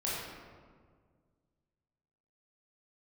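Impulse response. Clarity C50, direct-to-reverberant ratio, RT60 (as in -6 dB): -2.0 dB, -8.0 dB, 1.8 s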